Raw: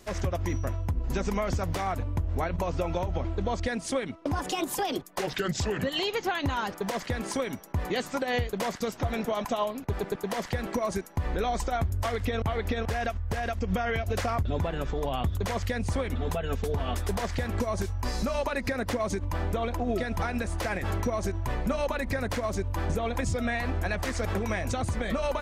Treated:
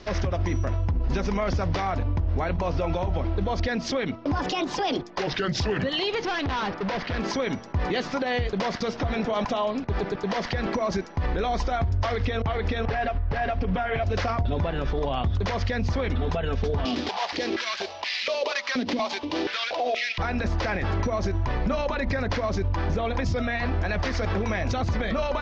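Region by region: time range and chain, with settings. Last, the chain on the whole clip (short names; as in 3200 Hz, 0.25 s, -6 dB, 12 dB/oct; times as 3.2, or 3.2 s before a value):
6.25–7.19 LPF 3800 Hz + hard clip -34 dBFS
12.87–14.03 air absorption 170 m + comb 7.2 ms, depth 54% + Doppler distortion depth 0.26 ms
16.85–20.18 median filter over 15 samples + resonant high shelf 2100 Hz +12 dB, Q 1.5 + stepped high-pass 4.2 Hz 250–2100 Hz
whole clip: steep low-pass 5700 Hz 48 dB/oct; limiter -26.5 dBFS; de-hum 117.2 Hz, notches 8; gain +8.5 dB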